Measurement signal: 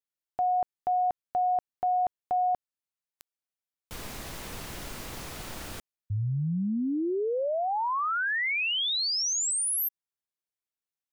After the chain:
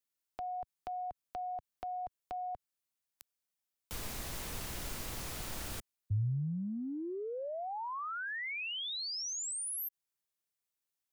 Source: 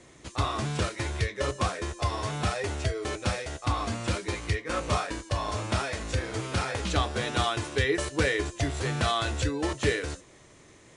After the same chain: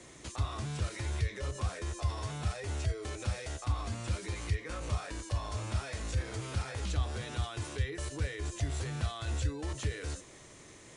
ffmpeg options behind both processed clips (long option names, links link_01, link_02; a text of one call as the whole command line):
ffmpeg -i in.wav -filter_complex "[0:a]highshelf=frequency=5000:gain=5.5,acrossover=split=110[link_01][link_02];[link_02]acompressor=threshold=-39dB:ratio=6:attack=2.7:release=56:knee=1:detection=rms[link_03];[link_01][link_03]amix=inputs=2:normalize=0" out.wav